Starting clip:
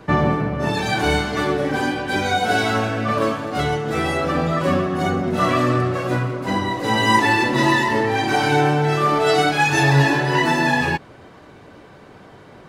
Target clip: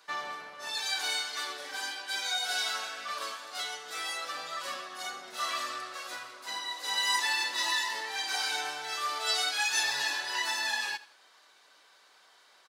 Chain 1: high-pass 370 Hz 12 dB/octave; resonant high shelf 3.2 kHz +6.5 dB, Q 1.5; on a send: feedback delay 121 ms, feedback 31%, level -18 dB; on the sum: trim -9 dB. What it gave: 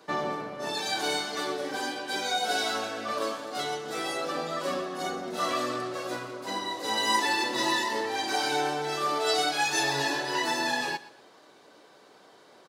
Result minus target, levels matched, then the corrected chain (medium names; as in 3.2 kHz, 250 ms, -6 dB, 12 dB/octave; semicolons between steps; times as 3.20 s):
500 Hz band +12.0 dB; echo 37 ms late
high-pass 1.3 kHz 12 dB/octave; resonant high shelf 3.2 kHz +6.5 dB, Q 1.5; on a send: feedback delay 84 ms, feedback 31%, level -18 dB; on the sum: trim -9 dB